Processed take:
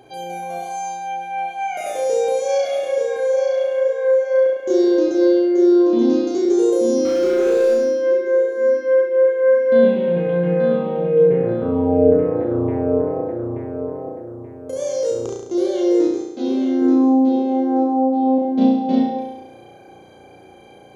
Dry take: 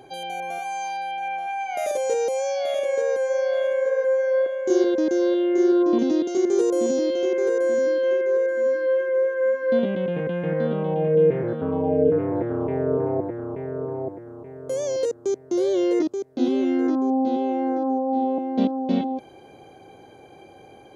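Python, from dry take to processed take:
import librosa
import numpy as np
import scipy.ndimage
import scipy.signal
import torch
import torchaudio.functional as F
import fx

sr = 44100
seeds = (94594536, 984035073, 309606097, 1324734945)

y = fx.power_curve(x, sr, exponent=0.7, at=(7.05, 7.74))
y = fx.transient(y, sr, attack_db=-10, sustain_db=12, at=(14.7, 15.33), fade=0.02)
y = fx.low_shelf(y, sr, hz=210.0, db=-11.0, at=(16.25, 16.82))
y = fx.room_flutter(y, sr, wall_m=5.9, rt60_s=0.92)
y = y * 10.0 ** (-1.0 / 20.0)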